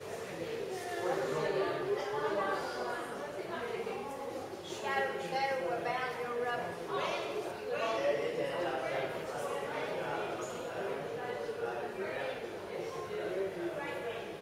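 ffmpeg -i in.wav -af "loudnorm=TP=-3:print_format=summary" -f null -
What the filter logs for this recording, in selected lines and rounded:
Input Integrated:    -36.9 LUFS
Input True Peak:     -19.9 dBTP
Input LRA:             3.4 LU
Input Threshold:     -46.9 LUFS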